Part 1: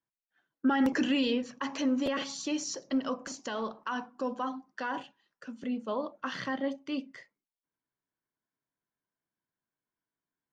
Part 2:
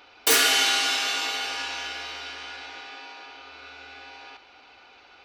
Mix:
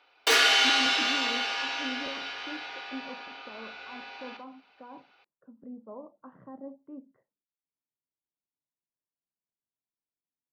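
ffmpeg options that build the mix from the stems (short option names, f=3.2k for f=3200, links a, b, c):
-filter_complex "[0:a]lowpass=f=1k:w=0.5412,lowpass=f=1k:w=1.3066,volume=-10dB[a];[1:a]agate=range=-11dB:threshold=-49dB:ratio=16:detection=peak,acrossover=split=360 5400:gain=0.224 1 0.141[b][c][d];[b][c][d]amix=inputs=3:normalize=0,volume=0.5dB[e];[a][e]amix=inputs=2:normalize=0"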